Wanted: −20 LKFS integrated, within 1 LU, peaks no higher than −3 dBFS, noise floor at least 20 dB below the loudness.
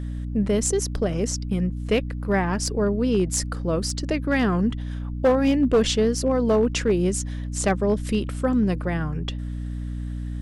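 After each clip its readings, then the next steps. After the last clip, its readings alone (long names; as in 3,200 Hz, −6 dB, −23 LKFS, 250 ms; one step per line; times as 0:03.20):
share of clipped samples 0.6%; peaks flattened at −13.0 dBFS; mains hum 60 Hz; hum harmonics up to 300 Hz; level of the hum −27 dBFS; integrated loudness −23.5 LKFS; sample peak −13.0 dBFS; target loudness −20.0 LKFS
→ clipped peaks rebuilt −13 dBFS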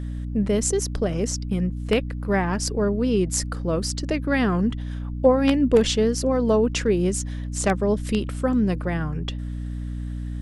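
share of clipped samples 0.0%; mains hum 60 Hz; hum harmonics up to 300 Hz; level of the hum −27 dBFS
→ hum removal 60 Hz, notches 5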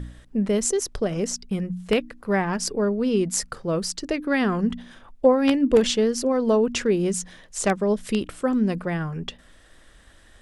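mains hum none found; integrated loudness −23.5 LKFS; sample peak −4.0 dBFS; target loudness −20.0 LKFS
→ level +3.5 dB
brickwall limiter −3 dBFS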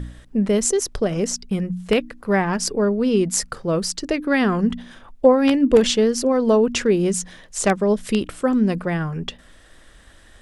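integrated loudness −20.0 LKFS; sample peak −3.0 dBFS; background noise floor −49 dBFS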